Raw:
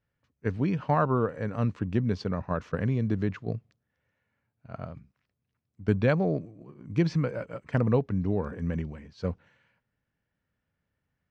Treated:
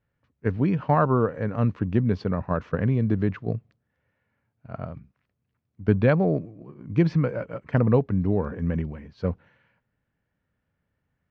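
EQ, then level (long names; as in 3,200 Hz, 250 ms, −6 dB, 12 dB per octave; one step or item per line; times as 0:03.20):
high-frequency loss of the air 89 metres
high-shelf EQ 4,400 Hz −9 dB
+4.5 dB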